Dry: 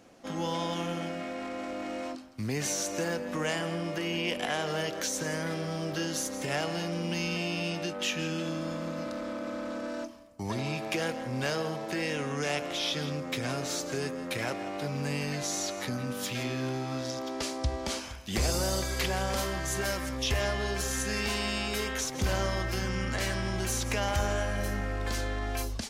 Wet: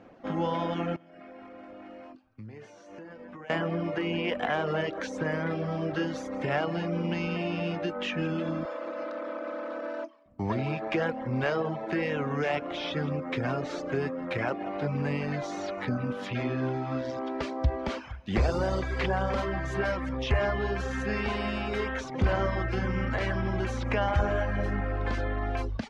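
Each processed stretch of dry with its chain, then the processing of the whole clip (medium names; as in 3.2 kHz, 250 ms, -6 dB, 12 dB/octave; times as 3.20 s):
0.96–3.50 s: band-stop 3.8 kHz, Q 19 + feedback comb 110 Hz, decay 0.73 s, mix 80% + compression 12:1, threshold -43 dBFS
8.65–10.26 s: high-pass 340 Hz 24 dB/octave + companded quantiser 8-bit
whole clip: reverb removal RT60 0.68 s; low-pass 2 kHz 12 dB/octave; trim +5 dB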